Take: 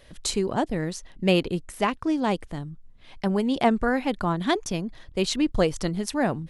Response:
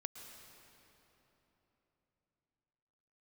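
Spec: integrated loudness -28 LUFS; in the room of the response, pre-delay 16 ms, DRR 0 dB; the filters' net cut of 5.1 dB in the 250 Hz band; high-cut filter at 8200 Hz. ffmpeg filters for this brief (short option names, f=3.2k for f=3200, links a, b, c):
-filter_complex "[0:a]lowpass=8.2k,equalizer=f=250:t=o:g=-7,asplit=2[a][b];[1:a]atrim=start_sample=2205,adelay=16[c];[b][c]afir=irnorm=-1:irlink=0,volume=3dB[d];[a][d]amix=inputs=2:normalize=0,volume=-3dB"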